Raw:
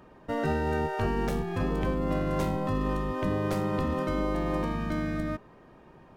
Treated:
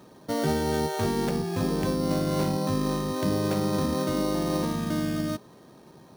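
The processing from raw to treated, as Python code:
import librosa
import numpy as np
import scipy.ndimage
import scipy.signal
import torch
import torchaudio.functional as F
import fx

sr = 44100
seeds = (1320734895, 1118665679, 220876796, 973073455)

y = scipy.signal.sosfilt(scipy.signal.butter(2, 120.0, 'highpass', fs=sr, output='sos'), x)
y = fx.low_shelf(y, sr, hz=430.0, db=5.5)
y = fx.sample_hold(y, sr, seeds[0], rate_hz=5000.0, jitter_pct=0)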